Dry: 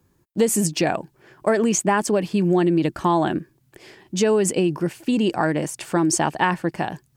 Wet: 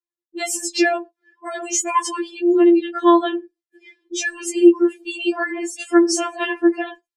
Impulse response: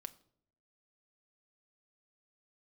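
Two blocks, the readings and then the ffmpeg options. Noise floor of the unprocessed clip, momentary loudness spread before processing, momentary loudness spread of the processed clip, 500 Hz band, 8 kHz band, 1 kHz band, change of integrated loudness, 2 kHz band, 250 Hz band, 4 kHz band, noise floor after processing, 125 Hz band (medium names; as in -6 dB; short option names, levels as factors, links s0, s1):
-63 dBFS, 8 LU, 14 LU, +1.5 dB, +1.0 dB, +0.5 dB, +2.5 dB, +3.0 dB, +3.5 dB, +3.0 dB, under -85 dBFS, under -35 dB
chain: -filter_complex "[0:a]agate=range=0.316:threshold=0.002:ratio=16:detection=peak,flanger=delay=0.7:depth=6.8:regen=46:speed=0.39:shape=triangular,asplit=2[s0][s1];[1:a]atrim=start_sample=2205,atrim=end_sample=6174,lowpass=4500[s2];[s1][s2]afir=irnorm=-1:irlink=0,volume=1.68[s3];[s0][s3]amix=inputs=2:normalize=0,crystalizer=i=4.5:c=0,afftdn=nr=23:nf=-34,highpass=170,lowpass=6200,afftfilt=real='re*4*eq(mod(b,16),0)':imag='im*4*eq(mod(b,16),0)':win_size=2048:overlap=0.75"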